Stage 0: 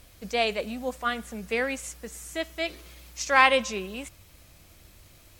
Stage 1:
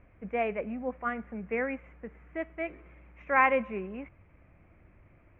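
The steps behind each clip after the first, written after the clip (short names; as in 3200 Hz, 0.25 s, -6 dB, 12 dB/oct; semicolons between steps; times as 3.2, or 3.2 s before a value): elliptic low-pass 2300 Hz, stop band 50 dB; bell 210 Hz +4.5 dB 2.3 oct; gain -4.5 dB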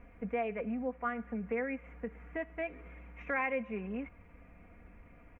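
comb 4.2 ms; compressor 2.5:1, threshold -38 dBFS, peak gain reduction 13.5 dB; gain +2 dB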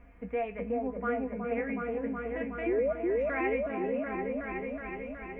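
resonator 53 Hz, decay 0.19 s, harmonics odd, mix 80%; painted sound rise, 2.66–2.93, 320–670 Hz -34 dBFS; repeats that get brighter 0.37 s, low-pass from 750 Hz, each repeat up 1 oct, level 0 dB; gain +6 dB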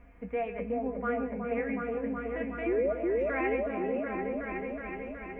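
reverb RT60 0.30 s, pre-delay 0.119 s, DRR 13.5 dB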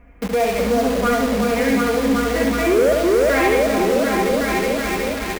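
in parallel at -3.5 dB: companded quantiser 2-bit; on the sum: echo 70 ms -4 dB; gain +6.5 dB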